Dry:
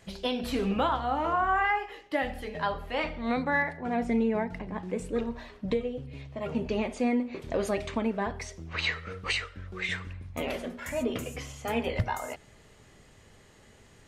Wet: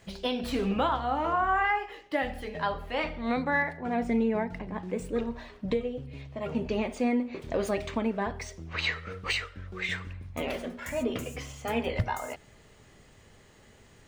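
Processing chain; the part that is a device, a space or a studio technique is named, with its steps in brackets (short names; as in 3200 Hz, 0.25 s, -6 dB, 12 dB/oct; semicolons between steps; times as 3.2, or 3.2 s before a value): crushed at another speed (playback speed 0.5×; sample-and-hold 3×; playback speed 2×)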